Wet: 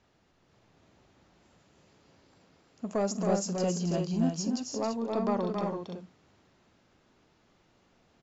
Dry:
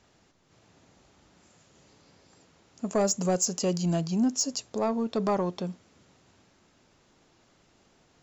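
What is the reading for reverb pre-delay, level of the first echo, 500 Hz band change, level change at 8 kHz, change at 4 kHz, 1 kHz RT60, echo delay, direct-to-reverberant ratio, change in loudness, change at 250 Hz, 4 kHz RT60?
none, -16.5 dB, -2.0 dB, -9.0 dB, -6.0 dB, none, 50 ms, none, -3.0 dB, -2.0 dB, none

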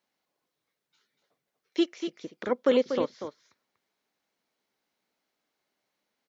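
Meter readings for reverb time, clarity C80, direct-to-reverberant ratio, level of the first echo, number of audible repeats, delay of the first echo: none, none, none, -8.5 dB, 1, 0.24 s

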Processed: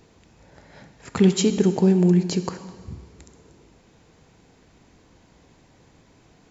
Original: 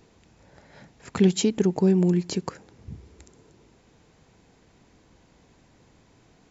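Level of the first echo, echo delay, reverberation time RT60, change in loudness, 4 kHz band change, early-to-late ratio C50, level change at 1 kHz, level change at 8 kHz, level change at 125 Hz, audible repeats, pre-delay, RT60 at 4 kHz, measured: none, none, 1.6 s, +3.0 dB, +3.0 dB, 11.0 dB, +3.0 dB, n/a, +3.5 dB, none, 6 ms, 1.5 s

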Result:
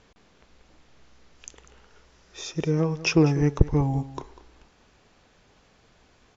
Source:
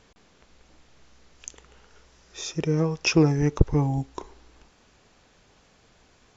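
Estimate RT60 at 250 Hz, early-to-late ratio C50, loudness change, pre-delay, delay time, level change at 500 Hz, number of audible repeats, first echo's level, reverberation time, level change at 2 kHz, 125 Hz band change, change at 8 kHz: none, none, 0.0 dB, none, 0.196 s, 0.0 dB, 1, -16.5 dB, none, -0.5 dB, 0.0 dB, n/a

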